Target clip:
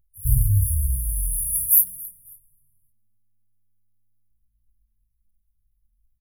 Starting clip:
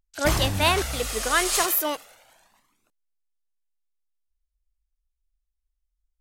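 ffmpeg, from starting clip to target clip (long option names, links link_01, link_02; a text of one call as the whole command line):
ffmpeg -i in.wav -filter_complex "[0:a]flanger=delay=16:depth=7.6:speed=1.3,asplit=2[link_01][link_02];[link_02]acrusher=bits=3:mode=log:mix=0:aa=0.000001,volume=-4dB[link_03];[link_01][link_03]amix=inputs=2:normalize=0,afftfilt=real='re*(1-between(b*sr/4096,140,9600))':imag='im*(1-between(b*sr/4096,140,9600))':win_size=4096:overlap=0.75,asplit=3[link_04][link_05][link_06];[link_05]adelay=273,afreqshift=-110,volume=-21dB[link_07];[link_06]adelay=546,afreqshift=-220,volume=-31.2dB[link_08];[link_04][link_07][link_08]amix=inputs=3:normalize=0,volume=8dB" out.wav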